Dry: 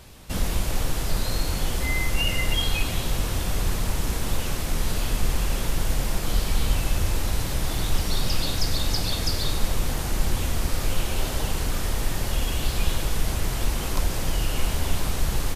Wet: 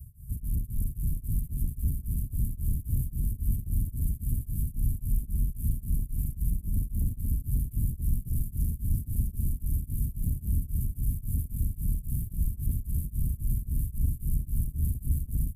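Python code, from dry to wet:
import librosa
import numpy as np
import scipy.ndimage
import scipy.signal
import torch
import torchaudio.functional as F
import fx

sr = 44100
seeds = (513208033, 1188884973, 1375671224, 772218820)

p1 = fx.highpass(x, sr, hz=58.0, slope=6)
p2 = fx.low_shelf(p1, sr, hz=160.0, db=8.5)
p3 = fx.notch_comb(p2, sr, f0_hz=190.0)
p4 = fx.over_compress(p3, sr, threshold_db=-19.0, ratio=-0.5)
p5 = scipy.signal.sosfilt(scipy.signal.cheby2(4, 60, [490.0, 4200.0], 'bandstop', fs=sr, output='sos'), p4)
p6 = 10.0 ** (-26.5 / 20.0) * np.tanh(p5 / 10.0 ** (-26.5 / 20.0))
p7 = fx.band_shelf(p6, sr, hz=780.0, db=-11.0, octaves=2.7)
p8 = p7 + fx.echo_heads(p7, sr, ms=356, heads='first and third', feedback_pct=71, wet_db=-11.0, dry=0)
p9 = p8 * np.abs(np.cos(np.pi * 3.7 * np.arange(len(p8)) / sr))
y = p9 * librosa.db_to_amplitude(3.0)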